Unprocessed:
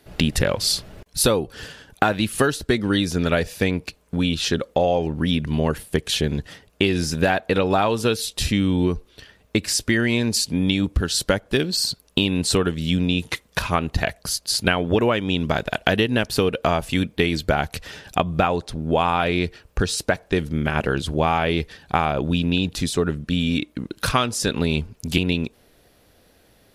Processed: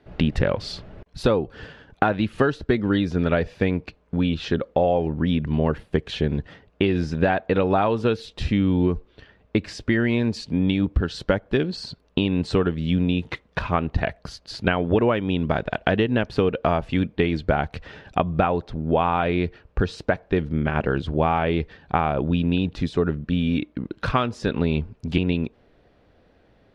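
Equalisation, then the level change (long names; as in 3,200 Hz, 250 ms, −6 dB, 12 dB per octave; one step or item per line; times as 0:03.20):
low-pass filter 4,000 Hz 12 dB per octave
high-shelf EQ 2,800 Hz −11.5 dB
0.0 dB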